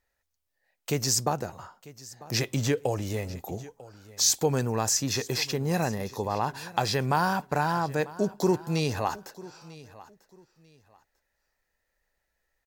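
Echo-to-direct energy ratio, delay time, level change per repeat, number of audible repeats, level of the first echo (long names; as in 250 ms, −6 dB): −19.0 dB, 945 ms, −12.0 dB, 2, −19.5 dB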